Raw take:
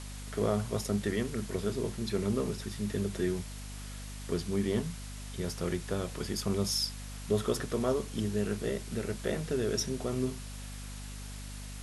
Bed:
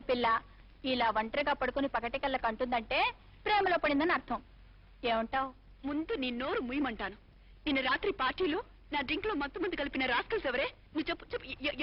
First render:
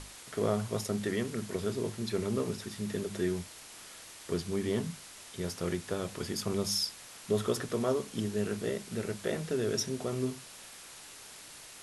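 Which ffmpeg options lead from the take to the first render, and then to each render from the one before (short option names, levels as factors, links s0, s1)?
-af "bandreject=f=50:t=h:w=6,bandreject=f=100:t=h:w=6,bandreject=f=150:t=h:w=6,bandreject=f=200:t=h:w=6,bandreject=f=250:t=h:w=6"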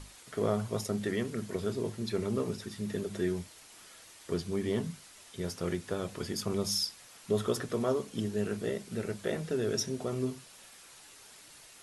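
-af "afftdn=nr=6:nf=-50"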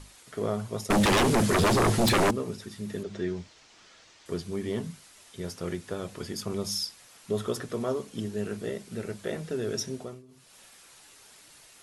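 -filter_complex "[0:a]asettb=1/sr,asplit=3[s0][s1][s2];[s0]atrim=end=0.904[s3];[s1]atrim=start=0.9:end=2.31,asetpts=PTS-STARTPTS,afade=t=in:d=0.004:c=qsin,afade=t=out:st=1.406:d=0.004:c=qsin,aeval=exprs='0.119*sin(PI/2*6.31*val(0)/0.119)':c=same[s4];[s2]atrim=start=2.306[s5];[s3][s4]acrossfade=d=0.004:c1=hsin:c2=qsin[s6];[s6][s5]acrossfade=d=0.004:c1=qsin:c2=hsin,asettb=1/sr,asplit=3[s7][s8][s9];[s7]atrim=end=3.034[s10];[s8]atrim=start=3.03:end=4.26,asetpts=PTS-STARTPTS,afade=t=in:d=0.004:c=qsin,afade=t=out:st=1.226:d=0.004:c=qsin,lowpass=f=6400:w=0.5412,lowpass=f=6400:w=1.3066[s11];[s9]atrim=start=4.256[s12];[s10][s11]acrossfade=d=0.004:c1=hsin:c2=qsin[s13];[s13][s12]acrossfade=d=0.004:c1=qsin:c2=hsin,asplit=3[s14][s15][s16];[s14]atrim=end=10.23,asetpts=PTS-STARTPTS,afade=t=out:st=9.94:d=0.29:silence=0.0668344[s17];[s15]atrim=start=10.23:end=10.28,asetpts=PTS-STARTPTS,volume=0.0668[s18];[s16]atrim=start=10.28,asetpts=PTS-STARTPTS,afade=t=in:d=0.29:silence=0.0668344[s19];[s17][s18][s19]concat=n=3:v=0:a=1"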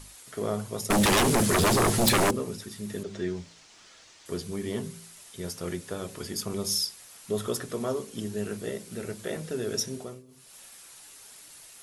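-af "highshelf=f=7900:g=11,bandreject=f=55.74:t=h:w=4,bandreject=f=111.48:t=h:w=4,bandreject=f=167.22:t=h:w=4,bandreject=f=222.96:t=h:w=4,bandreject=f=278.7:t=h:w=4,bandreject=f=334.44:t=h:w=4,bandreject=f=390.18:t=h:w=4,bandreject=f=445.92:t=h:w=4,bandreject=f=501.66:t=h:w=4,bandreject=f=557.4:t=h:w=4"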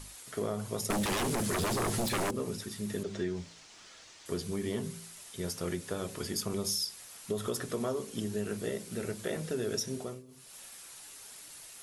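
-af "alimiter=limit=0.119:level=0:latency=1:release=110,acompressor=threshold=0.0355:ratio=6"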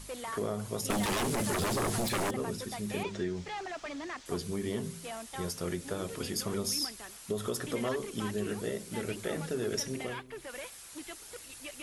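-filter_complex "[1:a]volume=0.282[s0];[0:a][s0]amix=inputs=2:normalize=0"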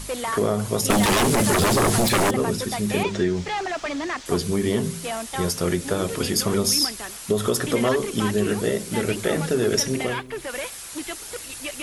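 -af "volume=3.98"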